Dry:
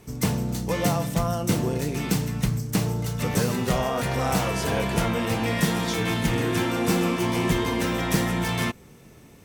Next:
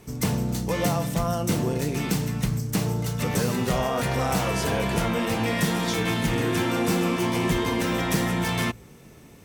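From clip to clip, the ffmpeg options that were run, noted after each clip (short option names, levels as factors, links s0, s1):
-filter_complex "[0:a]bandreject=f=56.37:t=h:w=4,bandreject=f=112.74:t=h:w=4,asplit=2[s0][s1];[s1]alimiter=limit=0.141:level=0:latency=1:release=99,volume=1.26[s2];[s0][s2]amix=inputs=2:normalize=0,volume=0.501"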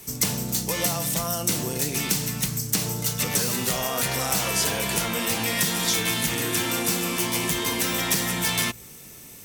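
-filter_complex "[0:a]acrossover=split=100|7300[s0][s1][s2];[s0]acompressor=threshold=0.00794:ratio=4[s3];[s1]acompressor=threshold=0.0631:ratio=4[s4];[s2]acompressor=threshold=0.00631:ratio=4[s5];[s3][s4][s5]amix=inputs=3:normalize=0,crystalizer=i=6:c=0,volume=0.75"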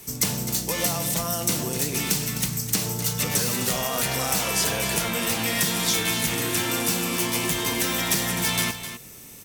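-af "aecho=1:1:256:0.282"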